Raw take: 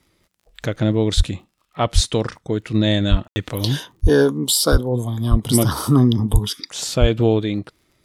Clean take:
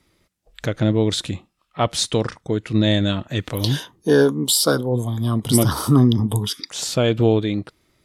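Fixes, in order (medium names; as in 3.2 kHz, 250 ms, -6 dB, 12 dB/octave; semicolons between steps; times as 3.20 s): de-click; de-plosive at 1.16/1.94/3.10/4.02/4.71/5.30/6.32/7.00 s; room tone fill 3.28–3.36 s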